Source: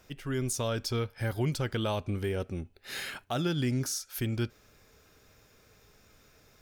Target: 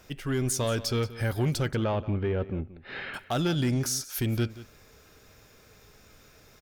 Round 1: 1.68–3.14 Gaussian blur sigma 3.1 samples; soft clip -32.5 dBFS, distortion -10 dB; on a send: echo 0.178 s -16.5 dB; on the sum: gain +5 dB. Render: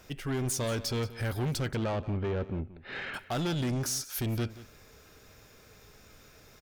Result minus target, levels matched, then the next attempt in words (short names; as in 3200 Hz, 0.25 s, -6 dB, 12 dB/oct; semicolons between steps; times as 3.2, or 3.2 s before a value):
soft clip: distortion +9 dB
1.68–3.14 Gaussian blur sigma 3.1 samples; soft clip -24.5 dBFS, distortion -19 dB; on a send: echo 0.178 s -16.5 dB; on the sum: gain +5 dB